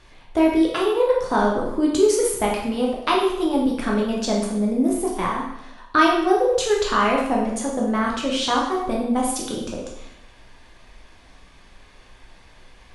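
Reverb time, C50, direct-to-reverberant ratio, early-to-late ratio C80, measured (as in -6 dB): 0.85 s, 3.0 dB, -2.5 dB, 6.0 dB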